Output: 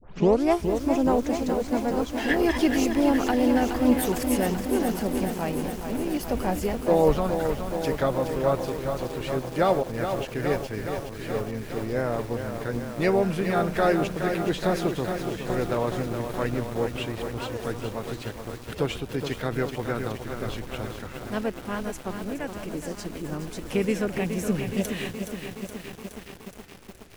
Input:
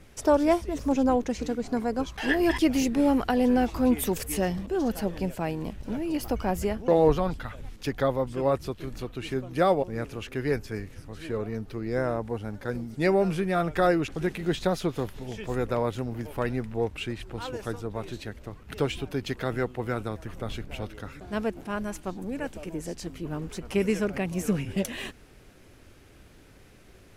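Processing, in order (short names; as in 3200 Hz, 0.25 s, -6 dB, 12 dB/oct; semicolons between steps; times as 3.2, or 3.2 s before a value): tape start at the beginning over 0.43 s; harmoniser +3 st -11 dB; lo-fi delay 0.42 s, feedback 80%, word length 7-bit, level -7 dB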